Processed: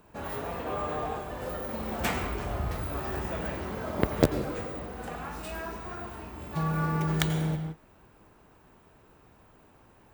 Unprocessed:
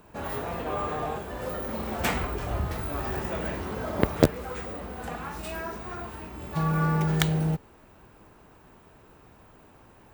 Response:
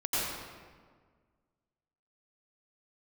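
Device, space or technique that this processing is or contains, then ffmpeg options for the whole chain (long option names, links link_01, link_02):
keyed gated reverb: -filter_complex "[0:a]asplit=3[link_01][link_02][link_03];[1:a]atrim=start_sample=2205[link_04];[link_02][link_04]afir=irnorm=-1:irlink=0[link_05];[link_03]apad=whole_len=446844[link_06];[link_05][link_06]sidechaingate=range=-33dB:threshold=-46dB:ratio=16:detection=peak,volume=-15dB[link_07];[link_01][link_07]amix=inputs=2:normalize=0,volume=-4dB"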